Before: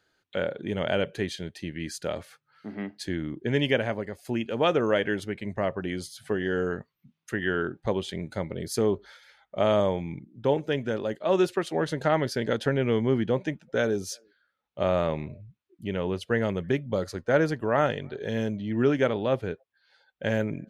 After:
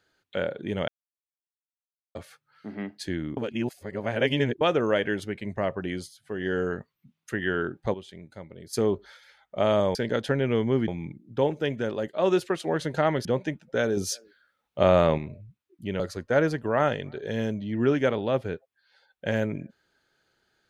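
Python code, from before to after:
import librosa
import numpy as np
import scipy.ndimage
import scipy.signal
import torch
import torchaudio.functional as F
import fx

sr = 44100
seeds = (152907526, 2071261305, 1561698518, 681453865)

y = fx.edit(x, sr, fx.silence(start_s=0.88, length_s=1.27),
    fx.reverse_span(start_s=3.37, length_s=1.24),
    fx.fade_down_up(start_s=5.97, length_s=0.5, db=-18.5, fade_s=0.25),
    fx.clip_gain(start_s=7.94, length_s=0.79, db=-11.0),
    fx.move(start_s=12.32, length_s=0.93, to_s=9.95),
    fx.clip_gain(start_s=13.97, length_s=1.21, db=5.5),
    fx.cut(start_s=16.0, length_s=0.98), tone=tone)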